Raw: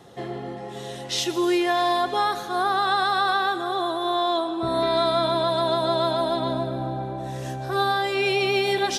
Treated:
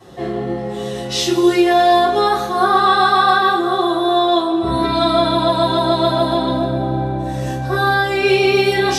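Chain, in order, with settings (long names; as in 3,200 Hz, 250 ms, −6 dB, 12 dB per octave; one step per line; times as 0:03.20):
high-pass filter 56 Hz
low-shelf EQ 120 Hz +5 dB
convolution reverb RT60 0.45 s, pre-delay 3 ms, DRR −9 dB
level −5 dB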